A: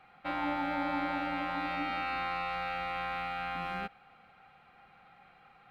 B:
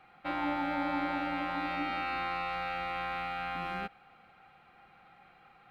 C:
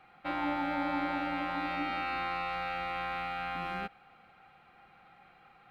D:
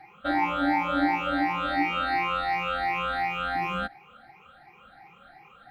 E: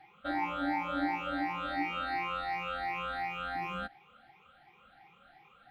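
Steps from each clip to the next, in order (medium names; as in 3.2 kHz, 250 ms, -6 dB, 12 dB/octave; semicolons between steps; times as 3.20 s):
peaking EQ 340 Hz +6 dB 0.23 oct
no audible change
drifting ripple filter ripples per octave 0.77, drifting +2.8 Hz, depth 22 dB; trim +2.5 dB
band noise 2–3.5 kHz -67 dBFS; trim -8 dB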